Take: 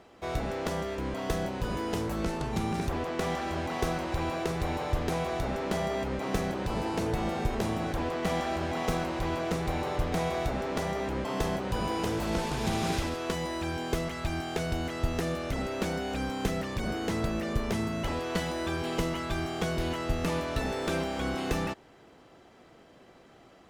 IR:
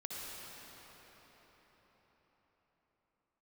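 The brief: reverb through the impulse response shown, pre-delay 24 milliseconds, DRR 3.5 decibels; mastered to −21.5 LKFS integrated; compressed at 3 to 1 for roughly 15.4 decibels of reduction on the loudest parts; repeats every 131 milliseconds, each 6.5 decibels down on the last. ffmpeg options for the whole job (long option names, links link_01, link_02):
-filter_complex "[0:a]acompressor=threshold=-46dB:ratio=3,aecho=1:1:131|262|393|524|655|786:0.473|0.222|0.105|0.0491|0.0231|0.0109,asplit=2[link_01][link_02];[1:a]atrim=start_sample=2205,adelay=24[link_03];[link_02][link_03]afir=irnorm=-1:irlink=0,volume=-4dB[link_04];[link_01][link_04]amix=inputs=2:normalize=0,volume=20.5dB"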